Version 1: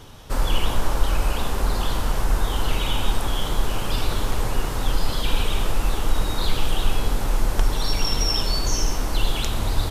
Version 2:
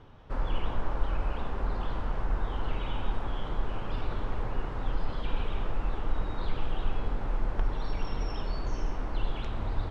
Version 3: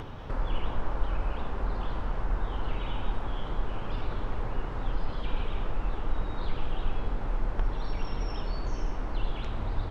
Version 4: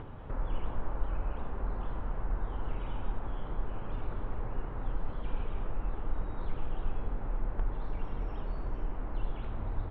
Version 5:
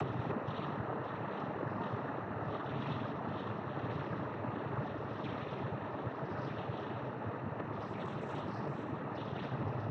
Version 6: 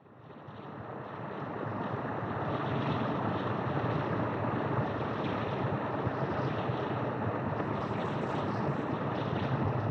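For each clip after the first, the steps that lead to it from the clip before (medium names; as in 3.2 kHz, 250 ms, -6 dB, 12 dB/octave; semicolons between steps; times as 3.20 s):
low-pass 2 kHz 12 dB/octave; trim -8.5 dB
upward compressor, threshold -28 dBFS
distance through air 490 m; trim -3.5 dB
upward compressor, threshold -29 dBFS; noise-vocoded speech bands 12; trim +5 dB
fade-in on the opening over 3.03 s; reverse echo 245 ms -7 dB; trim +6.5 dB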